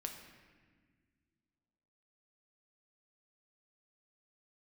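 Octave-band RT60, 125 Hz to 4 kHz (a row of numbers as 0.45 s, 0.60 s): 2.6 s, 2.7 s, 1.8 s, 1.4 s, 1.6 s, 1.2 s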